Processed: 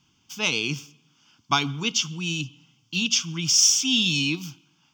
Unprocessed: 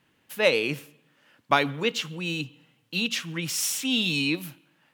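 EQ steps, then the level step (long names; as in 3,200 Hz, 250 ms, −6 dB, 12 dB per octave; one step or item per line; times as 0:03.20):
low-shelf EQ 310 Hz +6 dB
flat-topped bell 4,700 Hz +14.5 dB 1.2 octaves
phaser with its sweep stopped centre 2,700 Hz, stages 8
0.0 dB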